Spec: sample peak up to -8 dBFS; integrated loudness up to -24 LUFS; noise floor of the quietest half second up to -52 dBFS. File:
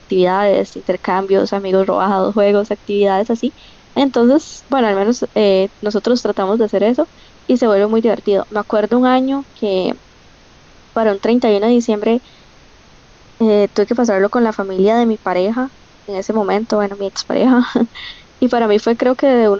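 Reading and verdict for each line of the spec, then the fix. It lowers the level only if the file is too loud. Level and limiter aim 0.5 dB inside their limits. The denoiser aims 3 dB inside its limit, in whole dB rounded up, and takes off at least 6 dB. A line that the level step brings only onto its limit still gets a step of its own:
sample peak -3.5 dBFS: fail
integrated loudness -15.5 LUFS: fail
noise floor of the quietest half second -45 dBFS: fail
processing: gain -9 dB

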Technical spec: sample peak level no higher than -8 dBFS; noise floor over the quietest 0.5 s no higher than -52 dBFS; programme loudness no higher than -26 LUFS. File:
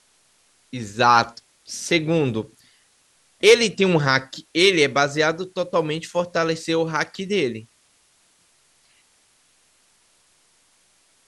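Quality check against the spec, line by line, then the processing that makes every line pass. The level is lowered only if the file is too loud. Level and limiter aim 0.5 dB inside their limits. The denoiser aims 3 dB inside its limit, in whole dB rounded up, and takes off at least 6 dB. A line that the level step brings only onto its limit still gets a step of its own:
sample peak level -2.0 dBFS: fail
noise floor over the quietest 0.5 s -61 dBFS: OK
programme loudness -20.0 LUFS: fail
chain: gain -6.5 dB

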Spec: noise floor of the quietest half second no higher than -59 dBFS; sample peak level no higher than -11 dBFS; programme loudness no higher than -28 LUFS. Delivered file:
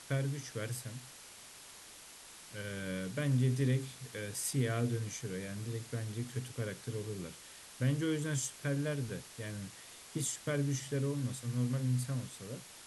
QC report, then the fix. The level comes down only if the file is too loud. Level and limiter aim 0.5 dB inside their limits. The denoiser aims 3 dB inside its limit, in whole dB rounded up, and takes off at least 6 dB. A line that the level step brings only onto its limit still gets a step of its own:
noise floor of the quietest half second -53 dBFS: fail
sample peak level -20.0 dBFS: OK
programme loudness -36.5 LUFS: OK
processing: denoiser 9 dB, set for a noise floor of -53 dBFS

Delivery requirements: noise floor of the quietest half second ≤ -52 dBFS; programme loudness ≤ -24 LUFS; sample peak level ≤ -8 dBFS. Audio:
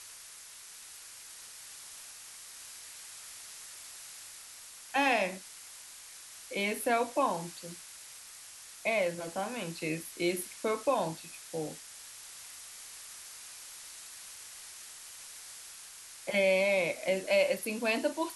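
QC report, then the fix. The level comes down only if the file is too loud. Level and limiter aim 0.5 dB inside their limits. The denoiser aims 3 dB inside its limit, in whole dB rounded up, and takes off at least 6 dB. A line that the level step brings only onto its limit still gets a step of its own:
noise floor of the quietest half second -50 dBFS: fail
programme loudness -33.5 LUFS: OK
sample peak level -15.0 dBFS: OK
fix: denoiser 6 dB, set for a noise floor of -50 dBFS

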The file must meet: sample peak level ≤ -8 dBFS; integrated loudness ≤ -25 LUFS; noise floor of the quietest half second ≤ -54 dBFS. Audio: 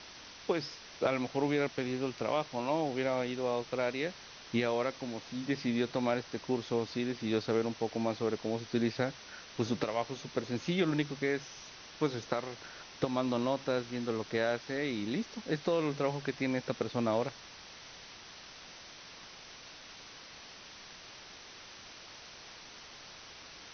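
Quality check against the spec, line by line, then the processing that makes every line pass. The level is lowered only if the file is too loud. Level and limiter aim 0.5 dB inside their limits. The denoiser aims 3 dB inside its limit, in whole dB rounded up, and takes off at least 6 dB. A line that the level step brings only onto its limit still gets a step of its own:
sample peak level -13.5 dBFS: OK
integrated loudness -34.0 LUFS: OK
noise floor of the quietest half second -51 dBFS: fail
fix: denoiser 6 dB, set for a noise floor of -51 dBFS

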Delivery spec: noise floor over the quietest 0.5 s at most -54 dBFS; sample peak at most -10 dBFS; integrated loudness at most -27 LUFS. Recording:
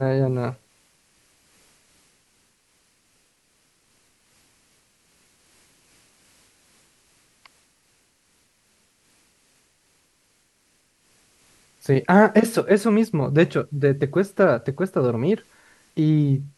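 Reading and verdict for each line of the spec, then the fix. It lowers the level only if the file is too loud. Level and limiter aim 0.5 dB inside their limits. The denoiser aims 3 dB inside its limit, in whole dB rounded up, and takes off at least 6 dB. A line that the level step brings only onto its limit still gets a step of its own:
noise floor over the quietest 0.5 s -65 dBFS: OK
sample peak -2.5 dBFS: fail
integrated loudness -20.5 LUFS: fail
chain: gain -7 dB; limiter -10.5 dBFS

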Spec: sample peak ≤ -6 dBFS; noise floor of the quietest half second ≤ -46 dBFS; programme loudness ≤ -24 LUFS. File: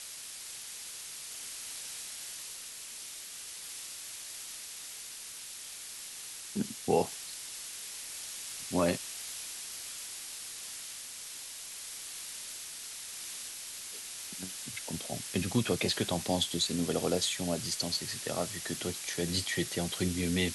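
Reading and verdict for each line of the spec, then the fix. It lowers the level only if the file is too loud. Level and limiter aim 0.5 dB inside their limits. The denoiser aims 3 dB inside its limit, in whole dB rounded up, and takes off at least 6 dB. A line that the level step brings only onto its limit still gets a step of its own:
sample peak -14.5 dBFS: OK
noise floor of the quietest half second -45 dBFS: fail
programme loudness -35.5 LUFS: OK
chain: denoiser 6 dB, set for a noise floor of -45 dBFS

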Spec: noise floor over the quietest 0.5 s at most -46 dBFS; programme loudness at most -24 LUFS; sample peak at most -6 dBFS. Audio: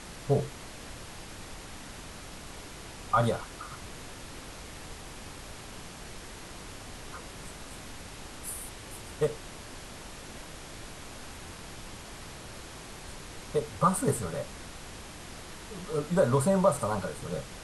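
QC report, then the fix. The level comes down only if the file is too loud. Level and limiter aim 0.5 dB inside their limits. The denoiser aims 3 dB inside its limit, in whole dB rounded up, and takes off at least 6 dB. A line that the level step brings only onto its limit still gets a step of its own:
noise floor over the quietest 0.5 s -44 dBFS: fail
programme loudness -34.5 LUFS: OK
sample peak -10.5 dBFS: OK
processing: denoiser 6 dB, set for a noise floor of -44 dBFS

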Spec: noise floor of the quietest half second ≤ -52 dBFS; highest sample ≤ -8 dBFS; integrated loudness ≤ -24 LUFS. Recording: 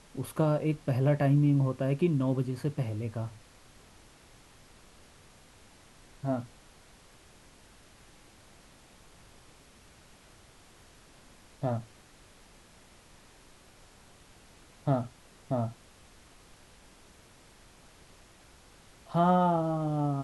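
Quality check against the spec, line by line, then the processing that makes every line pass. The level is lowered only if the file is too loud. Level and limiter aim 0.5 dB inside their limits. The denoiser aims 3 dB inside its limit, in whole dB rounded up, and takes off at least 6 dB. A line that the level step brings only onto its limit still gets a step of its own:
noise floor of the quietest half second -57 dBFS: OK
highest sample -14.0 dBFS: OK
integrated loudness -29.5 LUFS: OK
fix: none

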